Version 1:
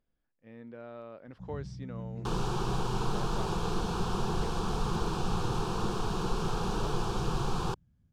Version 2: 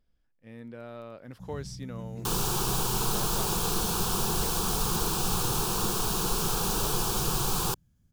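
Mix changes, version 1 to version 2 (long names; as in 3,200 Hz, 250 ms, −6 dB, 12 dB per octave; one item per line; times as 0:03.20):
speech: add low-shelf EQ 150 Hz +10.5 dB
master: remove head-to-tape spacing loss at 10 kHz 23 dB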